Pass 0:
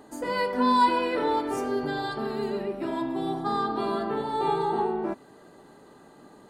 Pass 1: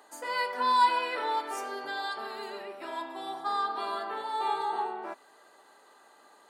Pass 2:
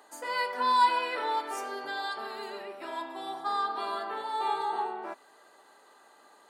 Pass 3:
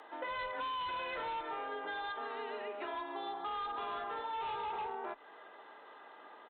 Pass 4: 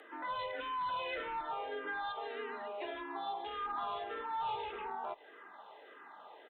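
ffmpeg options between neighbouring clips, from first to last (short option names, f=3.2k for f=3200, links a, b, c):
-af "highpass=810"
-af anull
-af "aresample=8000,asoftclip=type=hard:threshold=-30.5dB,aresample=44100,acompressor=threshold=-42dB:ratio=6,afreqshift=22,volume=4dB"
-filter_complex "[0:a]asplit=2[a][b];[b]afreqshift=-1.7[c];[a][c]amix=inputs=2:normalize=1,volume=3dB"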